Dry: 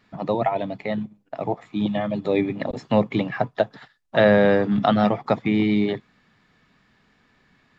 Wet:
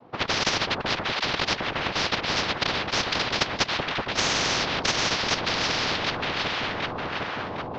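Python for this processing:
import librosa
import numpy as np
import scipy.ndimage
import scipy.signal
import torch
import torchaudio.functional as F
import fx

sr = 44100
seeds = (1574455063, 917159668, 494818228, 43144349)

p1 = scipy.signal.sosfilt(scipy.signal.butter(4, 290.0, 'highpass', fs=sr, output='sos'), x)
p2 = fx.env_lowpass(p1, sr, base_hz=410.0, full_db=-14.5)
p3 = fx.low_shelf(p2, sr, hz=430.0, db=-8.5)
p4 = fx.quant_dither(p3, sr, seeds[0], bits=6, dither='none')
p5 = p3 + (p4 * 10.0 ** (-5.0 / 20.0))
p6 = fx.noise_vocoder(p5, sr, seeds[1], bands=2)
p7 = scipy.ndimage.gaussian_filter1d(p6, 3.0, mode='constant')
p8 = p7 + fx.echo_alternate(p7, sr, ms=379, hz=830.0, feedback_pct=58, wet_db=-7, dry=0)
p9 = fx.spectral_comp(p8, sr, ratio=10.0)
y = p9 * 10.0 ** (-1.0 / 20.0)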